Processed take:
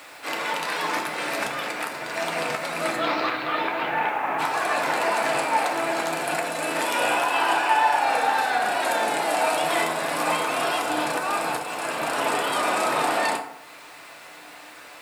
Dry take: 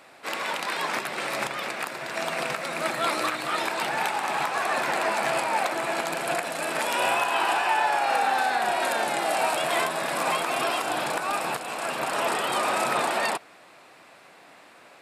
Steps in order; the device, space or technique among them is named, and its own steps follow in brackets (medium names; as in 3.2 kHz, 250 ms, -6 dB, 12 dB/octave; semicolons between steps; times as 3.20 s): 2.96–4.38 s: low-pass 5.4 kHz -> 2.3 kHz 24 dB/octave; noise-reduction cassette on a plain deck (tape noise reduction on one side only encoder only; wow and flutter 26 cents; white noise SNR 32 dB); FDN reverb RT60 0.76 s, low-frequency decay 0.85×, high-frequency decay 0.6×, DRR 2.5 dB